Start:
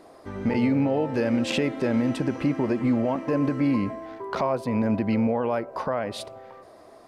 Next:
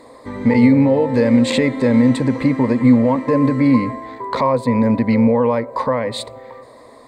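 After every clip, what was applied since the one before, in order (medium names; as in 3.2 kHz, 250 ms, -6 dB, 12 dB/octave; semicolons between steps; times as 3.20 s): rippled EQ curve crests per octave 1, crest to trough 12 dB; trim +6 dB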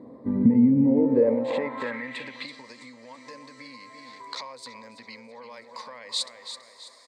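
feedback delay 330 ms, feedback 43%, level -12 dB; compression 4:1, threshold -22 dBFS, peak gain reduction 12.5 dB; band-pass sweep 200 Hz -> 5.6 kHz, 0.79–2.64 s; trim +8.5 dB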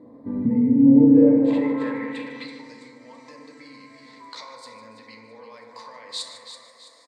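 delay 151 ms -14.5 dB; FDN reverb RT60 2.1 s, low-frequency decay 1.2×, high-frequency decay 0.25×, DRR 0.5 dB; trim -4 dB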